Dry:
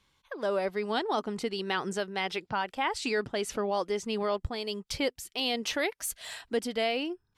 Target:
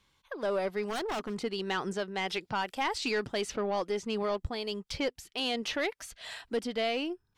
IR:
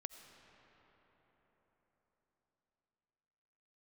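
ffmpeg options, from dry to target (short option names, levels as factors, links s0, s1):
-filter_complex "[0:a]asettb=1/sr,asplit=3[s0][s1][s2];[s0]atrim=end=2.284[s3];[s1]atrim=start=2.28:end=3.52,asetpts=PTS-STARTPTS,afade=t=in:d=0.004:c=qsin,afade=t=out:st=1.236:d=0.004:c=qsin,highshelf=f=5000:g=10.5[s4];[s2]atrim=start=3.516[s5];[s3][s4]acrossfade=d=0.004:c1=hsin:c2=qsin[s6];[s6][s5]acrossfade=d=0.004:c1=qsin:c2=hsin,acrossover=split=5600[s7][s8];[s8]acompressor=threshold=0.00224:ratio=6[s9];[s7][s9]amix=inputs=2:normalize=0,aeval=exprs='(tanh(12.6*val(0)+0.15)-tanh(0.15))/12.6':c=same,asplit=3[s10][s11][s12];[s10]afade=t=out:st=0.82:d=0.02[s13];[s11]aeval=exprs='0.0376*(abs(mod(val(0)/0.0376+3,4)-2)-1)':c=same,afade=t=in:st=0.82:d=0.02,afade=t=out:st=1.35:d=0.02[s14];[s12]afade=t=in:st=1.35:d=0.02[s15];[s13][s14][s15]amix=inputs=3:normalize=0"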